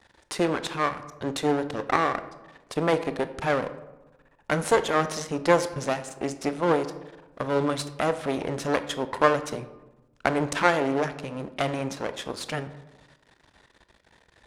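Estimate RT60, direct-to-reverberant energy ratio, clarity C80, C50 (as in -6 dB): 1.1 s, 11.0 dB, 15.5 dB, 13.5 dB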